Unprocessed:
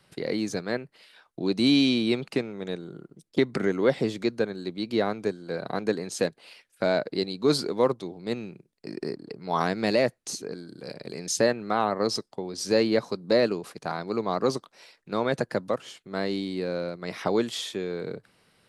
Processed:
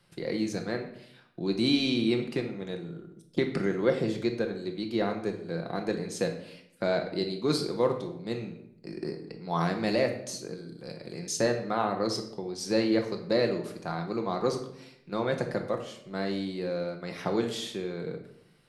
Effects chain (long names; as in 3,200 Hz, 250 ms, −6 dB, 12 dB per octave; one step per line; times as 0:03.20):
low-shelf EQ 150 Hz +5 dB
on a send: convolution reverb RT60 0.75 s, pre-delay 6 ms, DRR 3.5 dB
on the sum: level −5 dB